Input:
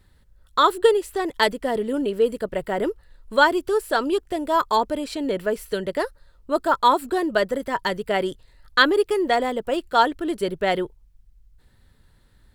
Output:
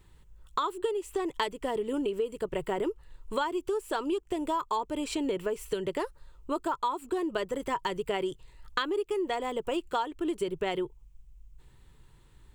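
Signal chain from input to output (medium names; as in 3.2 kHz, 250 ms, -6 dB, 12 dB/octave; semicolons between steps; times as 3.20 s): rippled EQ curve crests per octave 0.7, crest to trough 8 dB; compression 10:1, threshold -26 dBFS, peak gain reduction 17.5 dB; trim -1 dB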